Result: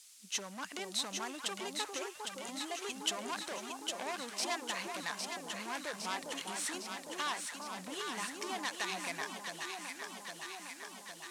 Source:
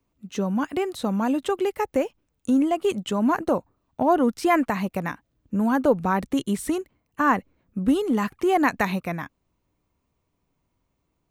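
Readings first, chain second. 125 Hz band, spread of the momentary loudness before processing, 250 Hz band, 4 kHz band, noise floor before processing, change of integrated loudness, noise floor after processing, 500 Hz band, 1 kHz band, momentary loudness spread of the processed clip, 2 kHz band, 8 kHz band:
-24.0 dB, 11 LU, -24.0 dB, +2.0 dB, -75 dBFS, -15.0 dB, -52 dBFS, -19.0 dB, -15.0 dB, 7 LU, -9.0 dB, +3.0 dB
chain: tracing distortion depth 0.11 ms; compression, threshold -27 dBFS, peak gain reduction 13 dB; added noise blue -57 dBFS; hard clipper -27 dBFS, distortion -13 dB; frequency weighting ITU-R 468; on a send: echo whose repeats swap between lows and highs 404 ms, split 1 kHz, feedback 83%, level -3 dB; on the sum: trim -6 dB

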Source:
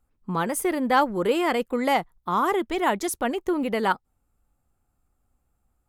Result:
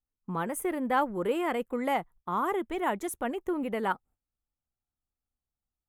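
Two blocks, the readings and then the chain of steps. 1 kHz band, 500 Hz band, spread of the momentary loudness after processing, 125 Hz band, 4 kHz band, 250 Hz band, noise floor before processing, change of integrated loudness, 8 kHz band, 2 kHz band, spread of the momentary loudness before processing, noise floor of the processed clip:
-6.5 dB, -6.0 dB, 6 LU, -6.0 dB, -11.0 dB, -6.0 dB, -73 dBFS, -6.5 dB, -8.5 dB, -7.0 dB, 6 LU, under -85 dBFS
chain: gate -49 dBFS, range -15 dB; peaking EQ 4.8 kHz -14 dB 0.79 oct; trim -6 dB

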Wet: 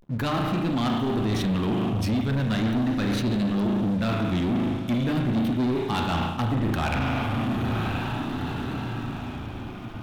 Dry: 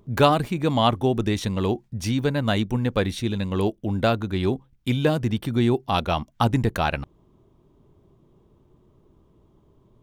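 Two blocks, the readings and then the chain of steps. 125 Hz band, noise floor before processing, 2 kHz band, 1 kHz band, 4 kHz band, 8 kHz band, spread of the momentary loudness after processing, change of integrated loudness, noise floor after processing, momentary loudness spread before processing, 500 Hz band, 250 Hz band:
-0.5 dB, -60 dBFS, -1.0 dB, -3.5 dB, -3.5 dB, no reading, 7 LU, -2.0 dB, -35 dBFS, 6 LU, -6.0 dB, +1.5 dB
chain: in parallel at -10.5 dB: saturation -15.5 dBFS, distortion -13 dB; on the sum: echo that smears into a reverb 946 ms, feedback 46%, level -16 dB; spring tank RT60 1.4 s, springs 36 ms, chirp 25 ms, DRR 3 dB; reverse; compression 5:1, threshold -32 dBFS, peak gain reduction 19.5 dB; reverse; ten-band graphic EQ 250 Hz +7 dB, 500 Hz -11 dB, 8 kHz -8 dB; waveshaping leveller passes 3; vibrato 0.38 Hz 89 cents; de-hum 49.26 Hz, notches 3; trim +1.5 dB

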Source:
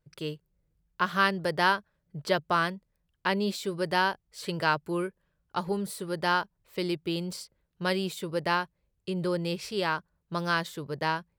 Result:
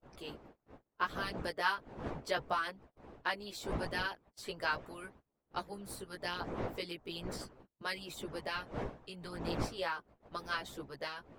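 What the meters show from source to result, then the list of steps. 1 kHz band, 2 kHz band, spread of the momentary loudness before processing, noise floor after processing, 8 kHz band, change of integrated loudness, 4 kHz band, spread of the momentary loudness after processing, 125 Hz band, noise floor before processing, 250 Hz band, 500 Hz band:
-10.0 dB, -8.5 dB, 12 LU, -85 dBFS, -7.5 dB, -10.0 dB, -8.0 dB, 12 LU, -10.5 dB, -78 dBFS, -12.0 dB, -10.5 dB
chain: wind noise 590 Hz -38 dBFS; chorus voices 2, 0.37 Hz, delay 16 ms, depth 2 ms; gate -50 dBFS, range -21 dB; harmonic-percussive split harmonic -15 dB; trim -2.5 dB

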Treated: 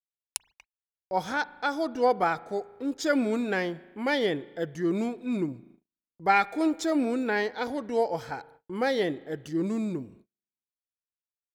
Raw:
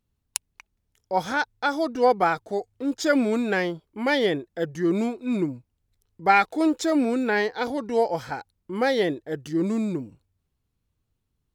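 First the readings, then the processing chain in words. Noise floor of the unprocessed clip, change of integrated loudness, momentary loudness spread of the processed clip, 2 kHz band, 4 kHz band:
-77 dBFS, -4.0 dB, 13 LU, -4.0 dB, -4.0 dB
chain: spring tank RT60 1.5 s, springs 37 ms, chirp 35 ms, DRR 19.5 dB; gate -49 dBFS, range -38 dB; trim -4 dB

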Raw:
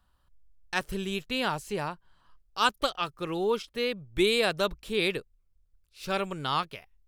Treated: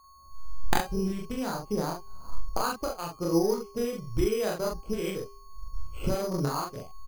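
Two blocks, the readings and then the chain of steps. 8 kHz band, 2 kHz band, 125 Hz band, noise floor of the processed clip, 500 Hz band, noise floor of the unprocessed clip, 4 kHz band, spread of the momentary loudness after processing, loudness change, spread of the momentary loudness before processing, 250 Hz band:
+4.5 dB, -8.5 dB, +5.5 dB, -52 dBFS, 0.0 dB, -70 dBFS, -9.0 dB, 17 LU, -1.5 dB, 11 LU, +3.5 dB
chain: local Wiener filter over 25 samples; recorder AGC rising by 46 dB/s; chorus voices 4, 0.57 Hz, delay 26 ms, depth 2.6 ms; dynamic bell 2.7 kHz, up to -8 dB, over -46 dBFS, Q 0.7; whistle 1.1 kHz -55 dBFS; doubling 42 ms -3 dB; de-hum 401.3 Hz, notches 32; careless resampling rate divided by 8×, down filtered, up hold

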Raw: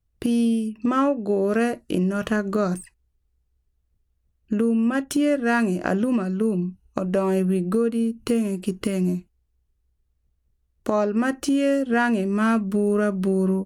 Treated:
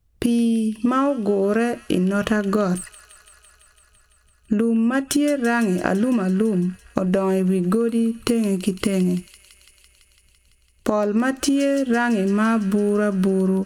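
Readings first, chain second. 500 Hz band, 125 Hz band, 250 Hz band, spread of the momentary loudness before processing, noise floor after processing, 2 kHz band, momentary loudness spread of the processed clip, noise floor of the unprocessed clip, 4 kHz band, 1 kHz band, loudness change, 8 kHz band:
+2.0 dB, +3.0 dB, +2.5 dB, 5 LU, -59 dBFS, +1.5 dB, 4 LU, -71 dBFS, +5.0 dB, +1.5 dB, +2.0 dB, +6.0 dB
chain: compression, threshold -25 dBFS, peak gain reduction 9 dB; feedback echo behind a high-pass 168 ms, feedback 79%, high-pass 2.5 kHz, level -13 dB; trim +8.5 dB

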